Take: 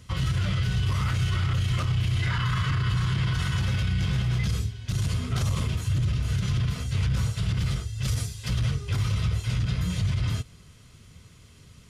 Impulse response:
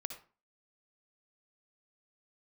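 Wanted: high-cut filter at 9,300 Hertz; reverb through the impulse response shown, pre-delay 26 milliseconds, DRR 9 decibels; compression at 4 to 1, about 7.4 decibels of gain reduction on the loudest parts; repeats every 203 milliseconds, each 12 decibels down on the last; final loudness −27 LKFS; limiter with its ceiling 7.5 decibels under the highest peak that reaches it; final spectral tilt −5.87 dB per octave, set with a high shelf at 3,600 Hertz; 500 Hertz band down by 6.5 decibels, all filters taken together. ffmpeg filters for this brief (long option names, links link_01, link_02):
-filter_complex "[0:a]lowpass=9300,equalizer=frequency=500:width_type=o:gain=-8.5,highshelf=frequency=3600:gain=-6.5,acompressor=threshold=-31dB:ratio=4,alimiter=level_in=6dB:limit=-24dB:level=0:latency=1,volume=-6dB,aecho=1:1:203|406|609:0.251|0.0628|0.0157,asplit=2[link_01][link_02];[1:a]atrim=start_sample=2205,adelay=26[link_03];[link_02][link_03]afir=irnorm=-1:irlink=0,volume=-7.5dB[link_04];[link_01][link_04]amix=inputs=2:normalize=0,volume=10.5dB"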